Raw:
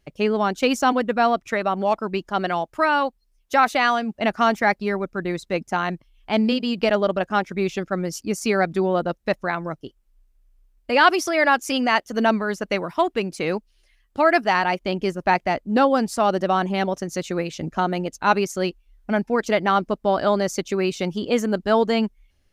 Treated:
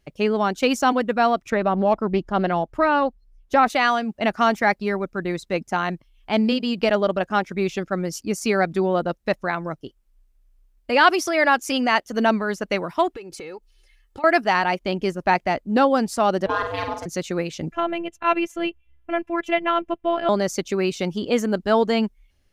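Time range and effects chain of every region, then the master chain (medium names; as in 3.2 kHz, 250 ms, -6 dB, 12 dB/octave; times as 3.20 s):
1.50–3.70 s: tilt EQ -2.5 dB/octave + loudspeaker Doppler distortion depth 0.13 ms
13.13–14.24 s: comb 2.3 ms, depth 70% + compression 8:1, threshold -33 dBFS
16.46–17.06 s: ring modulator 300 Hz + peaking EQ 90 Hz -11 dB 2.1 oct + flutter echo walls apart 8.2 m, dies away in 0.45 s
17.72–20.29 s: resonant high shelf 3.6 kHz -7.5 dB, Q 3 + robot voice 338 Hz
whole clip: none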